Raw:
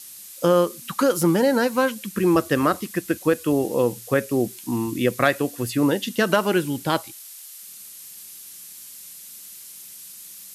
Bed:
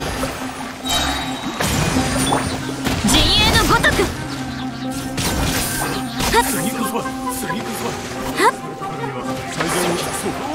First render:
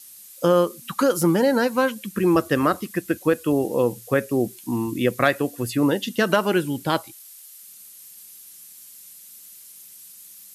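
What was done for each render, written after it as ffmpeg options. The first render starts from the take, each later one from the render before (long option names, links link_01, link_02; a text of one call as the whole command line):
ffmpeg -i in.wav -af "afftdn=noise_reduction=6:noise_floor=-42" out.wav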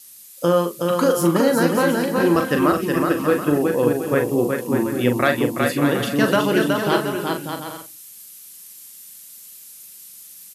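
ffmpeg -i in.wav -filter_complex "[0:a]asplit=2[link_01][link_02];[link_02]adelay=41,volume=-7dB[link_03];[link_01][link_03]amix=inputs=2:normalize=0,aecho=1:1:370|592|725.2|805.1|853.1:0.631|0.398|0.251|0.158|0.1" out.wav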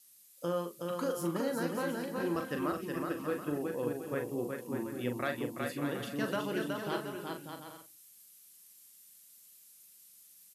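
ffmpeg -i in.wav -af "volume=-16.5dB" out.wav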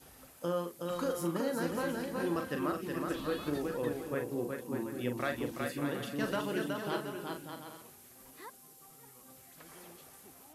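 ffmpeg -i in.wav -i bed.wav -filter_complex "[1:a]volume=-35dB[link_01];[0:a][link_01]amix=inputs=2:normalize=0" out.wav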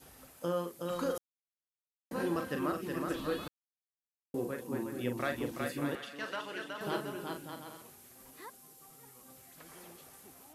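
ffmpeg -i in.wav -filter_complex "[0:a]asettb=1/sr,asplit=3[link_01][link_02][link_03];[link_01]atrim=end=5.954[link_04];[link_02]atrim=start=5.95:end=6.81,asetpts=PTS-STARTPTS,afade=type=in:duration=0.004:curve=qsin,afade=type=out:start_time=0.856:duration=0.004:curve=qsin,bandpass=frequency=2200:width_type=q:width=0.52[link_05];[link_03]atrim=start=6.806[link_06];[link_04][link_05]acrossfade=duration=0.004:curve1=hsin:curve2=qsin[link_07];[link_07][link_06]acrossfade=duration=0.004:curve1=qsin:curve2=hsin,asplit=5[link_08][link_09][link_10][link_11][link_12];[link_08]atrim=end=1.18,asetpts=PTS-STARTPTS,afade=type=out:start_time=1.176:duration=0.004:curve=hsin[link_13];[link_09]atrim=start=1.18:end=2.11,asetpts=PTS-STARTPTS,volume=0[link_14];[link_10]atrim=start=2.11:end=3.48,asetpts=PTS-STARTPTS,afade=type=in:duration=0.004:curve=hsin,afade=type=out:start_time=1.366:duration=0.004:curve=hsin[link_15];[link_11]atrim=start=3.48:end=4.34,asetpts=PTS-STARTPTS,volume=0[link_16];[link_12]atrim=start=4.34,asetpts=PTS-STARTPTS,afade=type=in:duration=0.004:curve=hsin[link_17];[link_13][link_14][link_15][link_16][link_17]concat=n=5:v=0:a=1" out.wav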